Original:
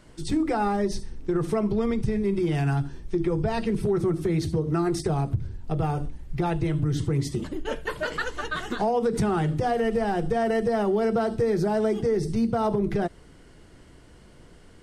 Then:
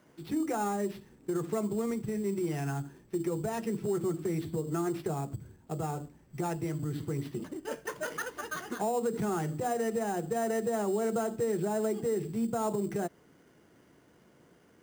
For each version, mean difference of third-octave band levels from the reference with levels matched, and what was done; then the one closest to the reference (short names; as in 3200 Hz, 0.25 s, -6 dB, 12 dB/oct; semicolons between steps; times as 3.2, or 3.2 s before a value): 4.5 dB: tone controls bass +1 dB, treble -12 dB; sample-rate reducer 7900 Hz, jitter 0%; HPF 170 Hz 12 dB/oct; gain -6.5 dB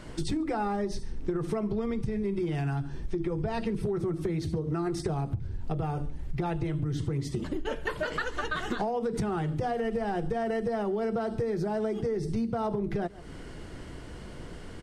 3.5 dB: high shelf 6200 Hz -6 dB; outdoor echo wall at 24 m, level -24 dB; compressor 6:1, threshold -37 dBFS, peak gain reduction 16 dB; gain +8.5 dB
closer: second